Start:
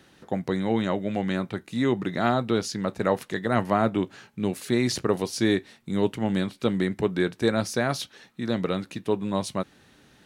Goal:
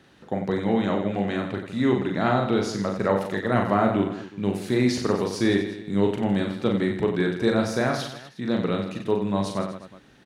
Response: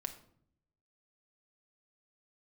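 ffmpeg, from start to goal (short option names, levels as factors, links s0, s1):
-af "highshelf=f=6000:g=-9.5,aecho=1:1:40|92|159.6|247.5|361.7:0.631|0.398|0.251|0.158|0.1"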